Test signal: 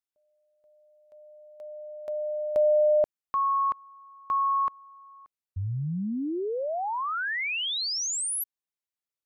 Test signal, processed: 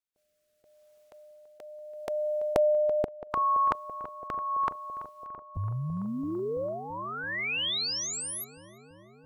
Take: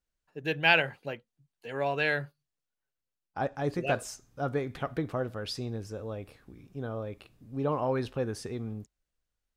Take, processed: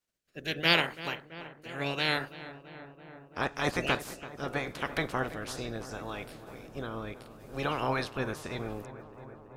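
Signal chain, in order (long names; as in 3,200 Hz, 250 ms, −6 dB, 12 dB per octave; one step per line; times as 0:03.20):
ceiling on every frequency bin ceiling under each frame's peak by 23 dB
rotating-speaker cabinet horn 0.75 Hz
feedback echo with a low-pass in the loop 334 ms, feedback 83%, low-pass 2,100 Hz, level −14.5 dB
level +1.5 dB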